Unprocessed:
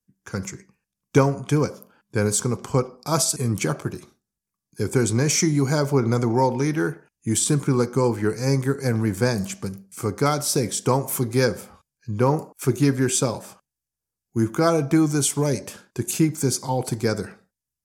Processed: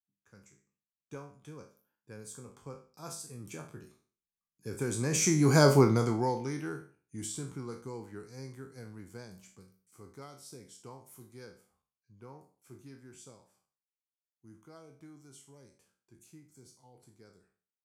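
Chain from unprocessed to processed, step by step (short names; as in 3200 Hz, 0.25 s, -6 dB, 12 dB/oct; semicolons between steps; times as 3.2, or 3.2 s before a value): spectral trails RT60 0.40 s; Doppler pass-by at 5.66, 10 m/s, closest 1.7 m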